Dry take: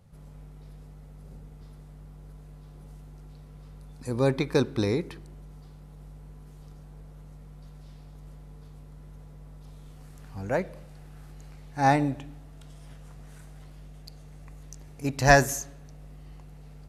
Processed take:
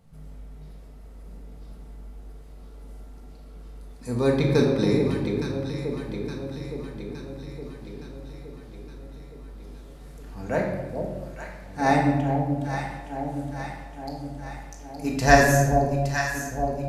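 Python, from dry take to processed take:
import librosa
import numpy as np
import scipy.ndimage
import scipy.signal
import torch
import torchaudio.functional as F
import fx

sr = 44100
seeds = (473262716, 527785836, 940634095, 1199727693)

y = fx.echo_alternate(x, sr, ms=433, hz=810.0, feedback_pct=77, wet_db=-5.0)
y = fx.room_shoebox(y, sr, seeds[0], volume_m3=680.0, walls='mixed', distance_m=1.6)
y = F.gain(torch.from_numpy(y), -1.0).numpy()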